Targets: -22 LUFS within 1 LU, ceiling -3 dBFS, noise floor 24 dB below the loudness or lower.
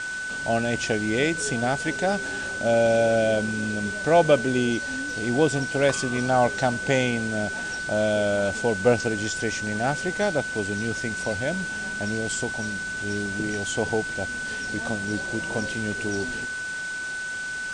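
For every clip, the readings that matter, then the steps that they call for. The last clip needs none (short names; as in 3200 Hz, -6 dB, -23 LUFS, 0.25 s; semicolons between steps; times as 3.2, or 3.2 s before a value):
steady tone 1500 Hz; tone level -29 dBFS; noise floor -32 dBFS; noise floor target -49 dBFS; loudness -25.0 LUFS; peak -6.0 dBFS; loudness target -22.0 LUFS
-> notch 1500 Hz, Q 30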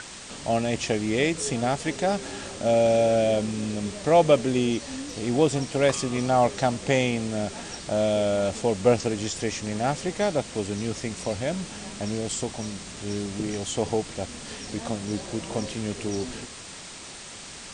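steady tone none; noise floor -41 dBFS; noise floor target -50 dBFS
-> denoiser 9 dB, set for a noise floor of -41 dBFS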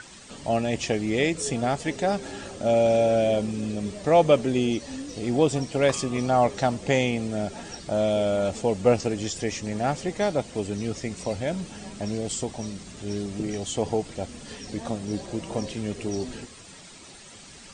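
noise floor -46 dBFS; noise floor target -50 dBFS
-> denoiser 6 dB, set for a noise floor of -46 dBFS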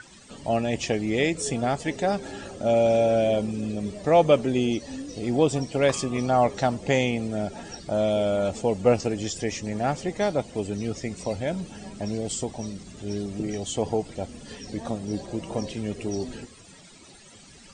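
noise floor -50 dBFS; loudness -26.0 LUFS; peak -6.0 dBFS; loudness target -22.0 LUFS
-> gain +4 dB; limiter -3 dBFS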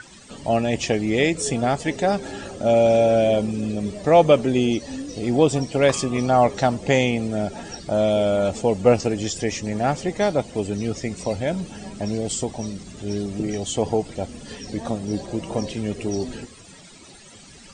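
loudness -22.0 LUFS; peak -3.0 dBFS; noise floor -46 dBFS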